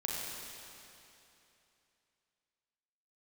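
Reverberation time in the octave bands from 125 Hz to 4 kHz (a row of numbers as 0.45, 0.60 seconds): 3.0, 2.9, 2.9, 2.9, 2.9, 2.7 seconds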